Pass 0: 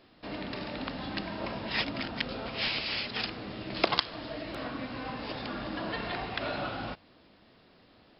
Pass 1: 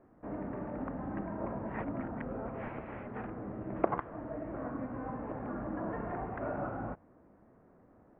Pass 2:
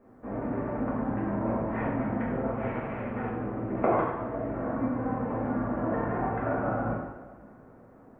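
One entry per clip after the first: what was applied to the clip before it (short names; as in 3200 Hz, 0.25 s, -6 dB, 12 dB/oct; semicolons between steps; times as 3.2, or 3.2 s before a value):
Bessel low-pass 970 Hz, order 8
two-slope reverb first 0.92 s, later 3.3 s, from -21 dB, DRR -7.5 dB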